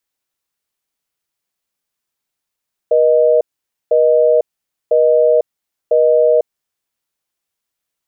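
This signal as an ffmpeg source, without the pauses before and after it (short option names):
-f lavfi -i "aevalsrc='0.282*(sin(2*PI*480*t)+sin(2*PI*620*t))*clip(min(mod(t,1),0.5-mod(t,1))/0.005,0,1)':d=3.67:s=44100"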